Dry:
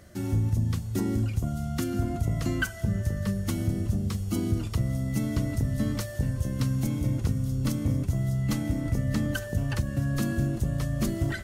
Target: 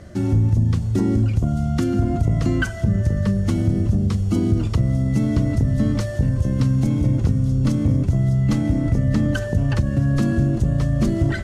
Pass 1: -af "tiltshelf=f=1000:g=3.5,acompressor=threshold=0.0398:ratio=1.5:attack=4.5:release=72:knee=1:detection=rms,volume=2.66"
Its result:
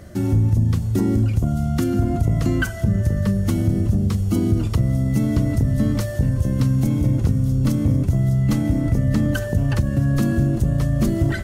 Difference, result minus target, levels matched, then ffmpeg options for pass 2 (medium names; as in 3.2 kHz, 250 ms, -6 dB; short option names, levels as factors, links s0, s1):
8 kHz band +3.0 dB
-af "tiltshelf=f=1000:g=3.5,acompressor=threshold=0.0398:ratio=1.5:attack=4.5:release=72:knee=1:detection=rms,lowpass=7800,volume=2.66"